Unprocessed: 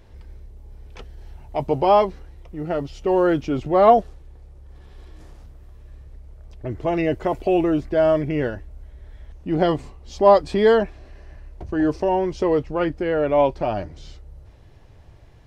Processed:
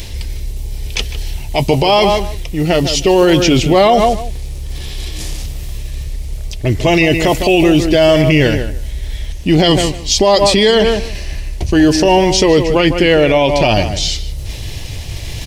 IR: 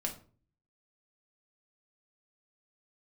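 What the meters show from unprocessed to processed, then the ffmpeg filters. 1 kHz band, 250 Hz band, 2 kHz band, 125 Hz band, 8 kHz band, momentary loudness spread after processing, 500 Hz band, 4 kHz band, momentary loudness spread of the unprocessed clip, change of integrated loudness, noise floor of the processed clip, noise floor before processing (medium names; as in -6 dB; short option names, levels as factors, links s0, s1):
+5.5 dB, +10.5 dB, +15.0 dB, +14.5 dB, no reading, 17 LU, +7.0 dB, +23.5 dB, 15 LU, +8.0 dB, -25 dBFS, -47 dBFS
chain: -filter_complex "[0:a]lowshelf=f=230:g=7,areverse,acompressor=mode=upward:threshold=0.0501:ratio=2.5,areverse,aexciter=amount=6:drive=6.8:freq=2100,asplit=2[s0][s1];[s1]adelay=154,lowpass=f=2600:p=1,volume=0.316,asplit=2[s2][s3];[s3]adelay=154,lowpass=f=2600:p=1,volume=0.17[s4];[s0][s2][s4]amix=inputs=3:normalize=0,alimiter=level_in=3.76:limit=0.891:release=50:level=0:latency=1,volume=0.891"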